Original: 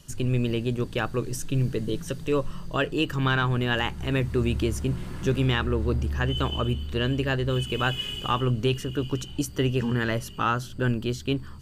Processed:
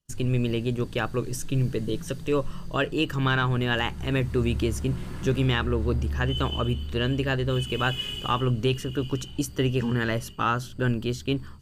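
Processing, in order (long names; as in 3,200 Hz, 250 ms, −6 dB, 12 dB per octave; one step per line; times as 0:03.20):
downward expander −35 dBFS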